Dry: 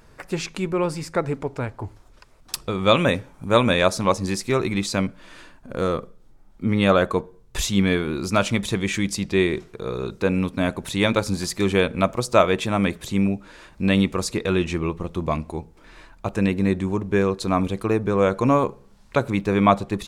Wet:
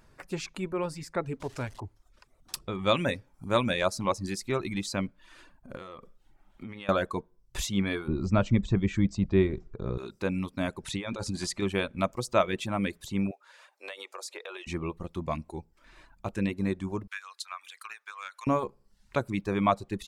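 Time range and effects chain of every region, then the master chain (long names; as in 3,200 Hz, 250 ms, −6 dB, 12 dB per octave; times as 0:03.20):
0:01.40–0:01.80: converter with a step at zero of −35 dBFS + low-pass filter 8,700 Hz + high-shelf EQ 3,800 Hz +7.5 dB
0:05.75–0:06.89: drawn EQ curve 150 Hz 0 dB, 3,200 Hz +11 dB, 4,700 Hz +2 dB + downward compressor 12 to 1, threshold −29 dBFS
0:08.08–0:09.98: Chebyshev low-pass filter 8,200 Hz, order 10 + spectral tilt −3.5 dB per octave
0:10.83–0:11.62: low-pass filter 10,000 Hz 24 dB per octave + compressor whose output falls as the input rises −24 dBFS
0:13.31–0:14.67: Butterworth high-pass 450 Hz + downward compressor 12 to 1, threshold −27 dBFS
0:17.07–0:18.47: high-pass filter 1,300 Hz 24 dB per octave + transient designer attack +11 dB, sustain +3 dB + downward compressor 2 to 1, threshold −32 dBFS
whole clip: reverb reduction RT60 0.59 s; notch filter 460 Hz, Q 12; level −7.5 dB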